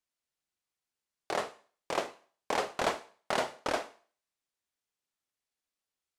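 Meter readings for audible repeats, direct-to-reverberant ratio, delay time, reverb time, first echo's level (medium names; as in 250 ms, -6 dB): no echo, 10.0 dB, no echo, 0.40 s, no echo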